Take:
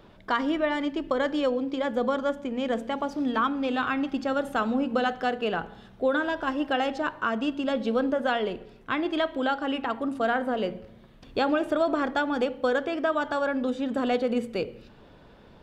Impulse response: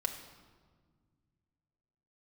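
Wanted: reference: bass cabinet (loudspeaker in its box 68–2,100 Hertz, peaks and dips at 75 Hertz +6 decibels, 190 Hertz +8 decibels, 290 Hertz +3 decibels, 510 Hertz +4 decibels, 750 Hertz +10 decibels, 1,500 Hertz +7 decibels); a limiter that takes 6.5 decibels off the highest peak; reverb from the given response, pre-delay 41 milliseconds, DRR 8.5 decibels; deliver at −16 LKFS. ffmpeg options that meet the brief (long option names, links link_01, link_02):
-filter_complex "[0:a]alimiter=limit=-19dB:level=0:latency=1,asplit=2[link_01][link_02];[1:a]atrim=start_sample=2205,adelay=41[link_03];[link_02][link_03]afir=irnorm=-1:irlink=0,volume=-11dB[link_04];[link_01][link_04]amix=inputs=2:normalize=0,highpass=frequency=68:width=0.5412,highpass=frequency=68:width=1.3066,equalizer=frequency=75:width_type=q:width=4:gain=6,equalizer=frequency=190:width_type=q:width=4:gain=8,equalizer=frequency=290:width_type=q:width=4:gain=3,equalizer=frequency=510:width_type=q:width=4:gain=4,equalizer=frequency=750:width_type=q:width=4:gain=10,equalizer=frequency=1500:width_type=q:width=4:gain=7,lowpass=frequency=2100:width=0.5412,lowpass=frequency=2100:width=1.3066,volume=8dB"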